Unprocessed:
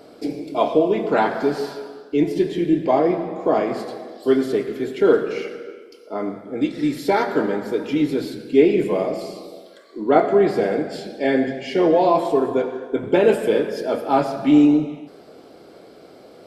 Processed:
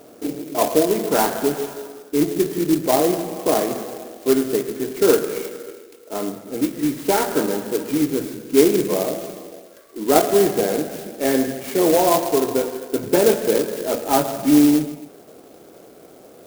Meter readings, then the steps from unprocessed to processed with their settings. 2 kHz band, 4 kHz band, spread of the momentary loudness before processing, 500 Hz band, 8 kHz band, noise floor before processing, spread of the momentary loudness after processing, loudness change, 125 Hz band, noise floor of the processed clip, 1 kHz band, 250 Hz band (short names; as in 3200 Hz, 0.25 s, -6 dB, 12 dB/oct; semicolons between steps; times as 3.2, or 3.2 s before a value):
-1.0 dB, +5.0 dB, 13 LU, -0.5 dB, n/a, -46 dBFS, 14 LU, +0.5 dB, 0.0 dB, -46 dBFS, -0.5 dB, 0.0 dB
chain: clock jitter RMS 0.084 ms